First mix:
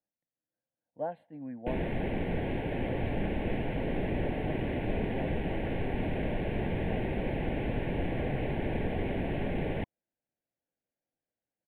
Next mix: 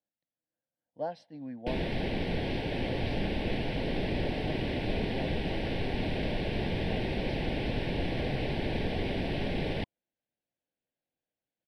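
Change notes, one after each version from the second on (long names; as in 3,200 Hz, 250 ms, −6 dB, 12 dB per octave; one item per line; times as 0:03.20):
master: remove Butterworth band-reject 5,400 Hz, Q 0.62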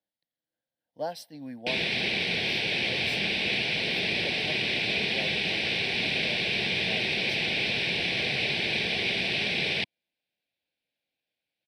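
background: add loudspeaker in its box 160–6,000 Hz, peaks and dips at 280 Hz −10 dB, 550 Hz −5 dB, 900 Hz −5 dB, 2,400 Hz +9 dB, 3,700 Hz +4 dB
master: remove head-to-tape spacing loss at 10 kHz 32 dB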